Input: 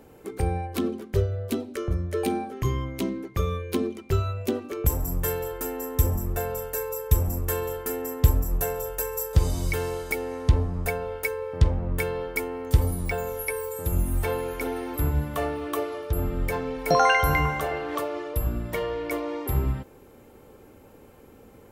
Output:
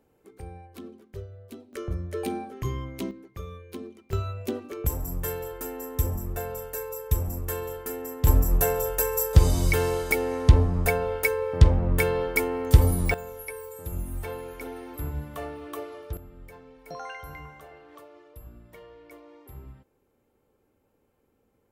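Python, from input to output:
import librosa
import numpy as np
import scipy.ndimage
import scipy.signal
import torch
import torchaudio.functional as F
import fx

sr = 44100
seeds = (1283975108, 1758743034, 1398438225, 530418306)

y = fx.gain(x, sr, db=fx.steps((0.0, -15.5), (1.73, -4.5), (3.11, -12.5), (4.13, -4.0), (8.27, 4.0), (13.14, -8.0), (16.17, -19.5)))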